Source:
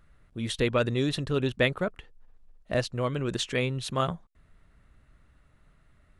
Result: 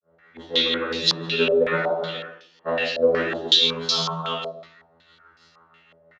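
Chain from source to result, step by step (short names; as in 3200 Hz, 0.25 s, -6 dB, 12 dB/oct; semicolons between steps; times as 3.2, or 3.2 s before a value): reverse delay 0.378 s, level -10 dB; bell 550 Hz +11 dB 2.8 oct; harmonic-percussive split percussive -6 dB; differentiator; compressor, threshold -42 dBFS, peak gain reduction 9.5 dB; robotiser 83 Hz; grains 0.225 s, grains 6.2/s, pitch spread up and down by 0 st; echo 0.129 s -13 dB; reverb RT60 0.70 s, pre-delay 3 ms, DRR -10.5 dB; stepped low-pass 5.4 Hz 590–5000 Hz; gain +8.5 dB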